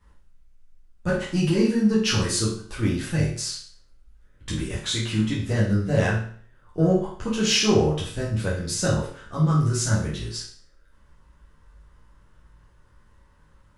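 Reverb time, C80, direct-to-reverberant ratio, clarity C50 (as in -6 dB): 0.50 s, 8.5 dB, -7.5 dB, 4.0 dB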